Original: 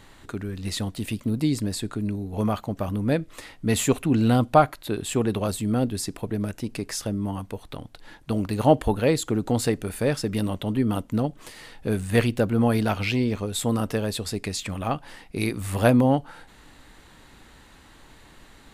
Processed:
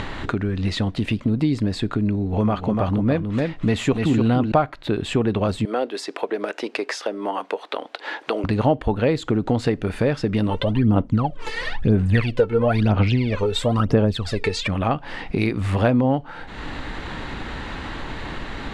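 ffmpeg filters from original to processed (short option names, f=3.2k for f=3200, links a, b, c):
-filter_complex "[0:a]asettb=1/sr,asplit=3[a][b][c];[a]atrim=end=2.164[d];[b]atrim=start=2.16:end=4.52,asetpts=PTS-STARTPTS,afade=t=in:d=0.004:c=qsin,afade=t=out:st=2.356:d=0.004:c=qsin,aecho=1:1:294:0.531,atrim=end_sample=104076[e];[c]atrim=start=4.516[f];[d][e]acrossfade=d=0.004:c1=hsin:c2=qsin[g];[g][f]acrossfade=d=0.004:c1=qsin:c2=hsin,asettb=1/sr,asplit=3[h][i][j];[h]atrim=end=5.654[k];[i]atrim=start=5.65:end=8.44,asetpts=PTS-STARTPTS,afade=t=in:d=0.004:c=qsin,afade=t=out:st=2.786:d=0.004:c=qsin,highpass=f=390:w=0.5412,highpass=f=390:w=1.3066[l];[j]atrim=start=8.436[m];[k][l]acrossfade=d=0.004:c1=hsin:c2=qsin[n];[n][m]acrossfade=d=0.004:c1=qsin:c2=hsin,asplit=3[o][p][q];[o]afade=t=out:st=10.49:d=0.02[r];[p]aphaser=in_gain=1:out_gain=1:delay=2.3:decay=0.78:speed=1:type=sinusoidal,afade=t=in:st=10.49:d=0.02,afade=t=out:st=14.67:d=0.02[s];[q]afade=t=in:st=14.67:d=0.02[t];[r][s][t]amix=inputs=3:normalize=0,acompressor=mode=upward:threshold=-23dB:ratio=2.5,lowpass=3.3k,acompressor=threshold=-23dB:ratio=3,volume=6.5dB"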